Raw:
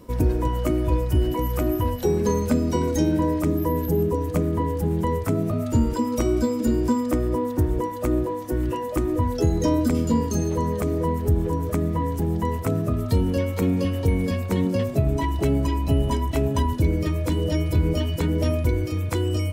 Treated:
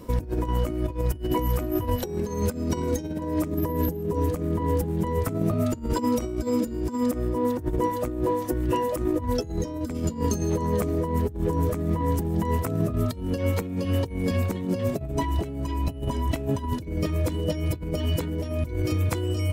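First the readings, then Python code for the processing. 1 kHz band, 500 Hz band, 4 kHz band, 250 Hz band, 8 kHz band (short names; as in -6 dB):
-2.0 dB, -2.5 dB, -2.5 dB, -4.0 dB, -2.0 dB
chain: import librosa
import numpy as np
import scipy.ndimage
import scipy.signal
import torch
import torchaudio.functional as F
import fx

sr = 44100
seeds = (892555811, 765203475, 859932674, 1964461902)

y = fx.over_compress(x, sr, threshold_db=-25.0, ratio=-0.5)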